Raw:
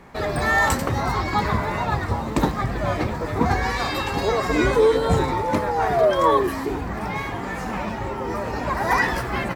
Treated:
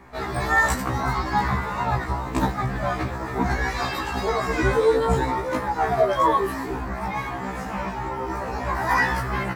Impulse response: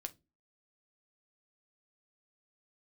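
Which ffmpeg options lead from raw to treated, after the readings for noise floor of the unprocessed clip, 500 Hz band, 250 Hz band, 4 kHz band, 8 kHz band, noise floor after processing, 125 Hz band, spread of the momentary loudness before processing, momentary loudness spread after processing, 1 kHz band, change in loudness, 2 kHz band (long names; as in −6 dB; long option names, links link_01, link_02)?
−29 dBFS, −3.0 dB, −3.0 dB, −3.5 dB, −2.0 dB, −31 dBFS, −2.0 dB, 10 LU, 10 LU, −0.5 dB, −1.5 dB, −0.5 dB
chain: -filter_complex "[0:a]asplit=2[link_01][link_02];[link_02]acrossover=split=450 3200:gain=0.158 1 0.178[link_03][link_04][link_05];[link_03][link_04][link_05]amix=inputs=3:normalize=0[link_06];[1:a]atrim=start_sample=2205,afade=type=out:start_time=0.34:duration=0.01,atrim=end_sample=15435[link_07];[link_06][link_07]afir=irnorm=-1:irlink=0,volume=-6dB[link_08];[link_01][link_08]amix=inputs=2:normalize=0,afftfilt=real='re*1.73*eq(mod(b,3),0)':imag='im*1.73*eq(mod(b,3),0)':win_size=2048:overlap=0.75"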